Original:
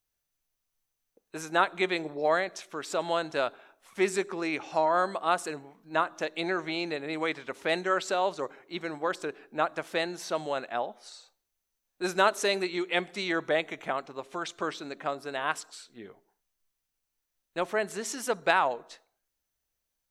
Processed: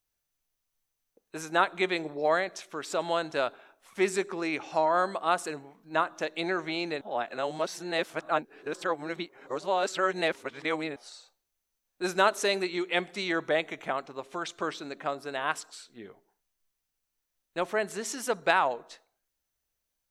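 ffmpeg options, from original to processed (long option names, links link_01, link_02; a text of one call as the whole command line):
ffmpeg -i in.wav -filter_complex "[0:a]asplit=3[link_01][link_02][link_03];[link_01]atrim=end=7.012[link_04];[link_02]atrim=start=7.008:end=10.962,asetpts=PTS-STARTPTS,areverse[link_05];[link_03]atrim=start=10.958[link_06];[link_04][link_05]acrossfade=duration=0.004:curve1=hsin:curve2=hsin[link_07];[link_07][link_06]acrossfade=duration=0.004:curve1=hsin:curve2=hsin" out.wav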